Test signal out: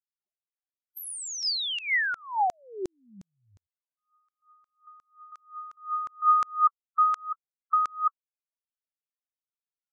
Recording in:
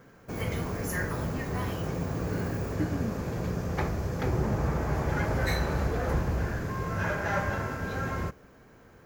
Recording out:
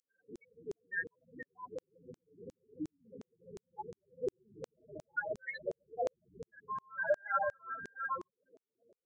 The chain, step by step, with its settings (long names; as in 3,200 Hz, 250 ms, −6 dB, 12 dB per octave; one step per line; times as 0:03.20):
high-shelf EQ 4,000 Hz −4.5 dB
spectral peaks only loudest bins 8
auto-filter high-pass saw down 2.8 Hz 430–6,700 Hz